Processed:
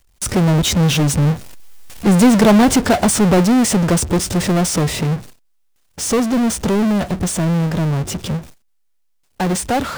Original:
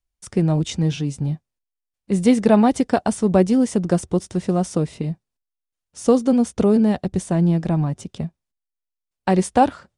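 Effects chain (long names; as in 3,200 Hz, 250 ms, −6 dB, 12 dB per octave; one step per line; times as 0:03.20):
source passing by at 0:02.14, 9 m/s, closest 6.2 metres
power curve on the samples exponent 0.35
noise gate with hold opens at −28 dBFS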